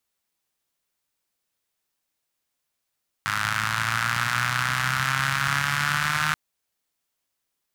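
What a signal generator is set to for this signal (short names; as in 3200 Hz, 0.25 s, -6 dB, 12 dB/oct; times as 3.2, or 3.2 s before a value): four-cylinder engine model, changing speed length 3.08 s, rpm 3100, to 4600, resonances 130/1400 Hz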